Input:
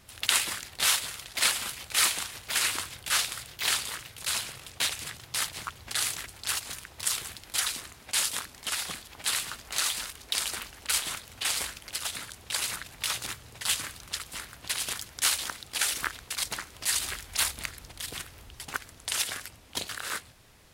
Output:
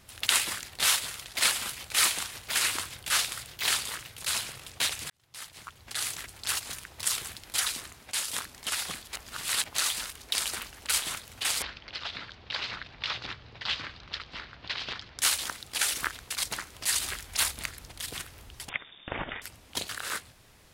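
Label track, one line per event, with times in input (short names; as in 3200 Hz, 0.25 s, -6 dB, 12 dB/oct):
5.100000	6.460000	fade in
7.850000	8.280000	fade out equal-power, to -8 dB
9.130000	9.750000	reverse
11.620000	15.190000	steep low-pass 4700 Hz
18.690000	19.420000	inverted band carrier 3600 Hz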